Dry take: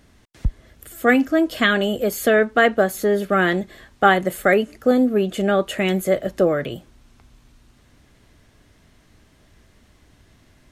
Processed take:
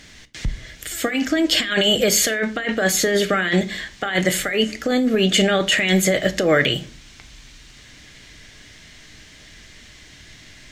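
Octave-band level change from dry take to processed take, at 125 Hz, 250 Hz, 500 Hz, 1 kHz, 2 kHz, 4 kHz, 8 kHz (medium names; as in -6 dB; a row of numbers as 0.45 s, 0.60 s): +2.5 dB, -0.5 dB, -2.0 dB, -6.5 dB, +0.5 dB, +10.5 dB, +13.5 dB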